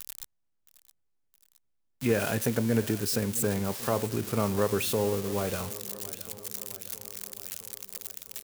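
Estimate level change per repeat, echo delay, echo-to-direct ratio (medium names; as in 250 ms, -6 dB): -4.5 dB, 667 ms, -15.5 dB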